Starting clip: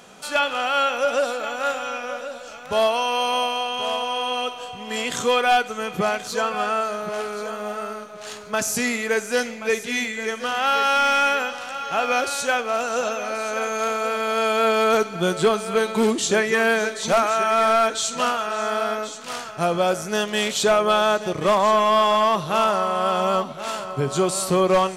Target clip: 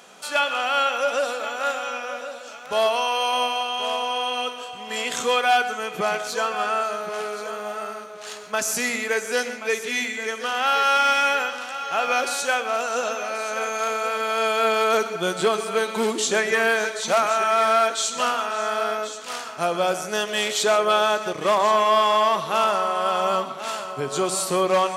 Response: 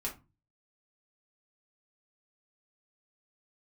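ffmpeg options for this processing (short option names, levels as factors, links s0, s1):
-filter_complex "[0:a]highpass=f=430:p=1,asplit=2[s0][s1];[1:a]atrim=start_sample=2205,adelay=121[s2];[s1][s2]afir=irnorm=-1:irlink=0,volume=0.211[s3];[s0][s3]amix=inputs=2:normalize=0"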